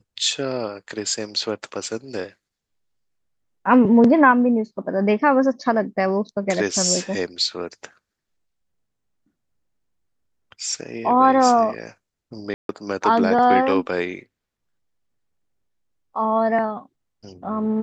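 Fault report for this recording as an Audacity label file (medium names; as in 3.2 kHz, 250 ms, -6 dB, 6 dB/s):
12.540000	12.690000	dropout 152 ms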